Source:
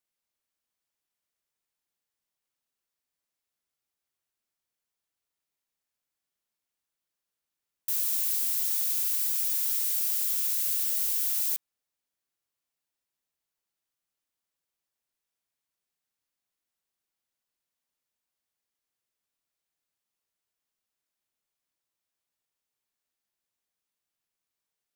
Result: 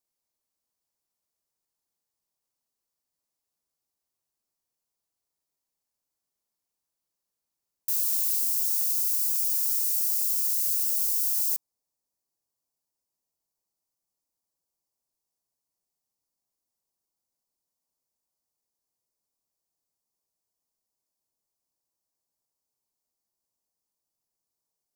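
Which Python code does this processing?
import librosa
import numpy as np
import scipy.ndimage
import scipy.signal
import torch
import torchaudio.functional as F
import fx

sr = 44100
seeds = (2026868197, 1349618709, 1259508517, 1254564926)

y = fx.band_shelf(x, sr, hz=2200.0, db=fx.steps((0.0, -8.0), (8.39, -14.5)), octaves=1.7)
y = y * 10.0 ** (2.0 / 20.0)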